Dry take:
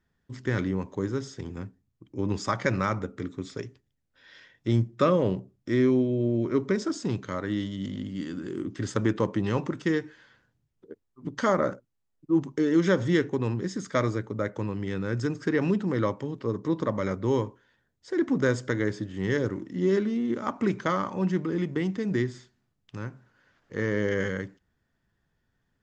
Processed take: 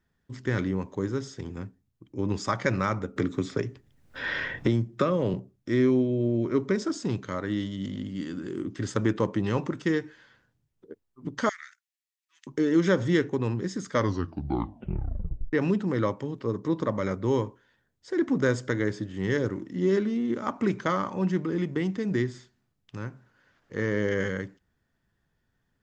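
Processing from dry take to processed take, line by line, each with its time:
0:03.16–0:05.34: multiband upward and downward compressor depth 100%
0:11.49–0:12.47: elliptic high-pass filter 1,800 Hz, stop band 70 dB
0:13.90: tape stop 1.63 s

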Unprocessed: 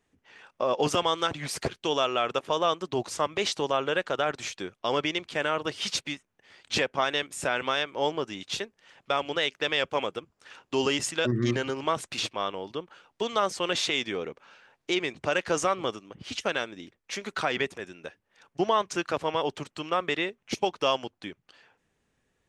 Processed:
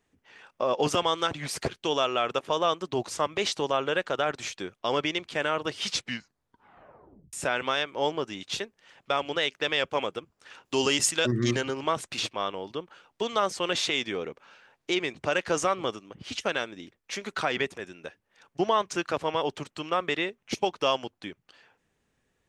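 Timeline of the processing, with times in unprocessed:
0:05.89: tape stop 1.44 s
0:10.65–0:11.61: high-shelf EQ 4,400 Hz +10 dB

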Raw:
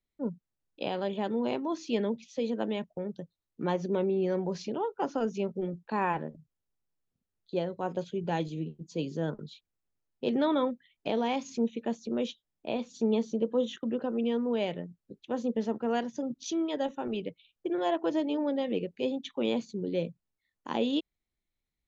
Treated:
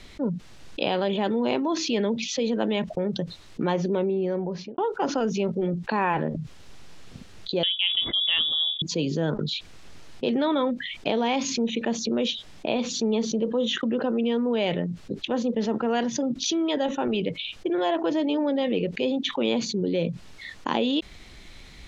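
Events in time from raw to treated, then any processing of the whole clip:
0:03.69–0:04.78: fade out and dull
0:07.63–0:08.82: voice inversion scrambler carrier 3,600 Hz
whole clip: low-pass filter 4,000 Hz 12 dB per octave; high-shelf EQ 3,000 Hz +9.5 dB; envelope flattener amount 70%; level +1 dB

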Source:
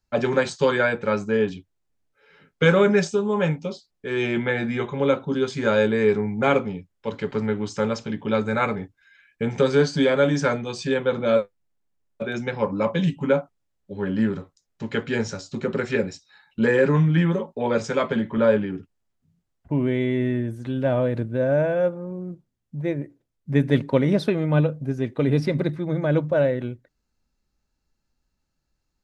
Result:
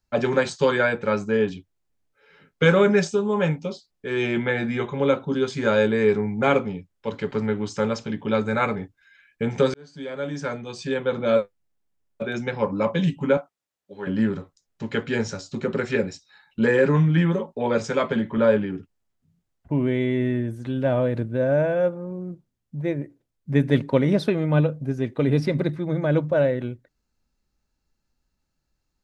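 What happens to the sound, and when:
0:09.74–0:11.38: fade in
0:13.37–0:14.07: high-pass filter 650 Hz 6 dB per octave

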